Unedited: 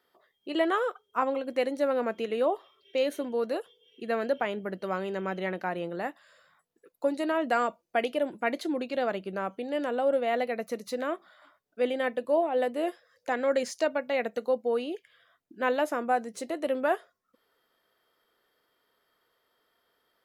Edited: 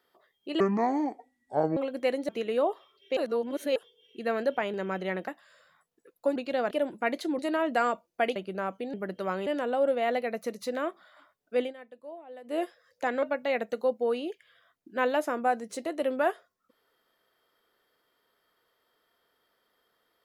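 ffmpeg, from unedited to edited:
-filter_complex "[0:a]asplit=17[a][b][c][d][e][f][g][h][i][j][k][l][m][n][o][p][q];[a]atrim=end=0.604[r];[b]atrim=start=0.6:end=1.3,asetpts=PTS-STARTPTS,asetrate=26460,aresample=44100[s];[c]atrim=start=1.296:end=1.822[t];[d]atrim=start=2.118:end=3.002[u];[e]atrim=start=2.998:end=3.592,asetpts=PTS-STARTPTS,areverse[v];[f]atrim=start=3.588:end=4.572[w];[g]atrim=start=5.098:end=5.642[x];[h]atrim=start=6.058:end=7.142[y];[i]atrim=start=8.788:end=9.142[z];[j]atrim=start=8.108:end=8.792[aa];[k]atrim=start=7.138:end=8.112[ab];[l]atrim=start=9.138:end=9.722[ac];[m]atrim=start=4.568:end=5.102[ad];[n]atrim=start=9.718:end=11.99,asetpts=PTS-STARTPTS,afade=t=out:st=2.102:d=0.17:c=qsin:silence=0.11885[ae];[o]atrim=start=11.99:end=12.69,asetpts=PTS-STARTPTS,volume=-18.5dB[af];[p]atrim=start=12.69:end=13.482,asetpts=PTS-STARTPTS,afade=t=in:d=0.17:c=qsin:silence=0.11885[ag];[q]atrim=start=13.868[ah];[r][s]acrossfade=d=0.004:c1=hsin:c2=hsin[ai];[ai][t]acrossfade=d=0.004:c1=hsin:c2=hsin[aj];[aj][u]acrossfade=d=0.004:c1=hsin:c2=hsin[ak];[ak][v]acrossfade=d=0.004:c1=hsin:c2=hsin[al];[al][w]acrossfade=d=0.004:c1=hsin:c2=hsin[am];[am][x]acrossfade=d=0.004:c1=hsin:c2=hsin[an];[an][y]acrossfade=d=0.004:c1=hsin:c2=hsin[ao];[ao][z]acrossfade=d=0.004:c1=hsin:c2=hsin[ap];[ap][aa]acrossfade=d=0.004:c1=hsin:c2=hsin[aq];[aq][ab]acrossfade=d=0.004:c1=hsin:c2=hsin[ar];[ar][ac]acrossfade=d=0.004:c1=hsin:c2=hsin[as];[as][ad]acrossfade=d=0.004:c1=hsin:c2=hsin[at];[ae][af][ag]concat=n=3:v=0:a=1[au];[at][au]acrossfade=d=0.004:c1=hsin:c2=hsin[av];[av][ah]acrossfade=d=0.004:c1=hsin:c2=hsin"

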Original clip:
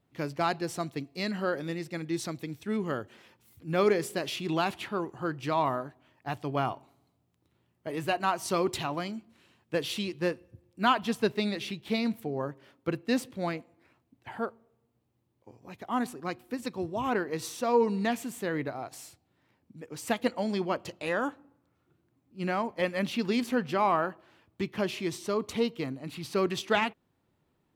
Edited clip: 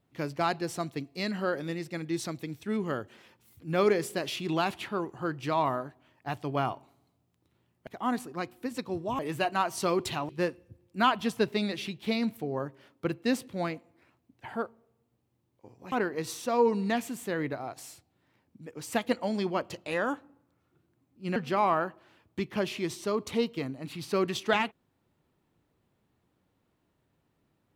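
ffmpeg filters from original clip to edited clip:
-filter_complex "[0:a]asplit=6[a][b][c][d][e][f];[a]atrim=end=7.872[g];[b]atrim=start=15.748:end=17.072[h];[c]atrim=start=7.868:end=8.972[i];[d]atrim=start=10.118:end=15.752[j];[e]atrim=start=17.068:end=22.512[k];[f]atrim=start=23.578[l];[g][h]acrossfade=d=0.004:c1=hsin:c2=hsin[m];[m][i]acrossfade=d=0.004:c1=hsin:c2=hsin[n];[n][j]acrossfade=d=0.004:c1=hsin:c2=hsin[o];[o][k]acrossfade=d=0.004:c1=hsin:c2=hsin[p];[p][l]acrossfade=d=0.004:c1=hsin:c2=hsin"

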